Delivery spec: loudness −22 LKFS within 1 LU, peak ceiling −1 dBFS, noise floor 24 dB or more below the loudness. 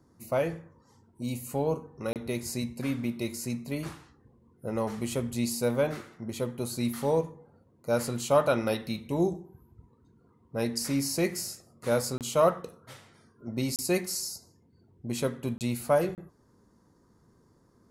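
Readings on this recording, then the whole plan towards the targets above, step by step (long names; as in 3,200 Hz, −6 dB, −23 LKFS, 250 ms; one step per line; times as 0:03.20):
number of dropouts 5; longest dropout 28 ms; integrated loudness −30.5 LKFS; sample peak −10.5 dBFS; target loudness −22.0 LKFS
→ repair the gap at 0:02.13/0:12.18/0:13.76/0:15.58/0:16.15, 28 ms
level +8.5 dB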